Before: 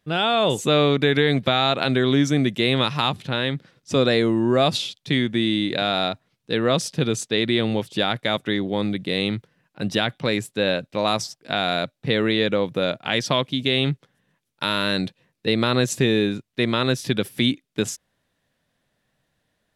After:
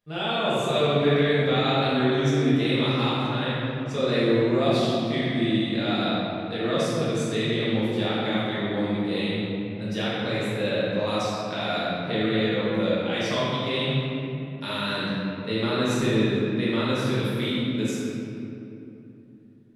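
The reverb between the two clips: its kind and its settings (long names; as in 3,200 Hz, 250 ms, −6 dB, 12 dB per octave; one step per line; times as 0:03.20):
rectangular room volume 130 cubic metres, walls hard, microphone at 1.3 metres
level −14 dB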